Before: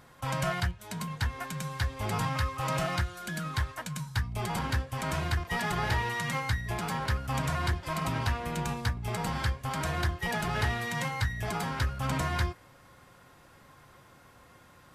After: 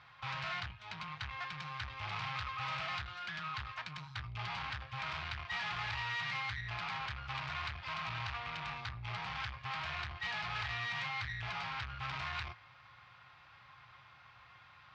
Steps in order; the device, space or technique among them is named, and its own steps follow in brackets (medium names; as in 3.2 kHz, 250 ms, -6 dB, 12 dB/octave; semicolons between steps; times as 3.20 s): low-pass 5 kHz 12 dB/octave; scooped metal amplifier (valve stage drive 38 dB, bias 0.6; cabinet simulation 76–4500 Hz, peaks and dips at 120 Hz +7 dB, 310 Hz +9 dB, 500 Hz -4 dB, 810 Hz +5 dB, 1.2 kHz +6 dB, 2.4 kHz +5 dB; amplifier tone stack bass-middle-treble 10-0-10); trim +6.5 dB